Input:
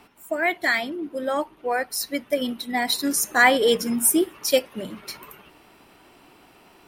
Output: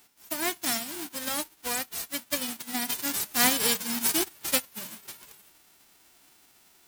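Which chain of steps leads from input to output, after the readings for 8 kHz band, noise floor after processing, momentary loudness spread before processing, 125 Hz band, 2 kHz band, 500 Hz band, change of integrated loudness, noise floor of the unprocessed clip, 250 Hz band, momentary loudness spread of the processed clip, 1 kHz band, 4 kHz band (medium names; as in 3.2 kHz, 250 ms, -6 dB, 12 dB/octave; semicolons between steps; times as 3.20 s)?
-2.0 dB, -60 dBFS, 17 LU, -4.0 dB, -10.5 dB, -14.5 dB, -5.0 dB, -54 dBFS, -9.0 dB, 16 LU, -9.5 dB, -2.5 dB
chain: formants flattened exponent 0.1; trim -6.5 dB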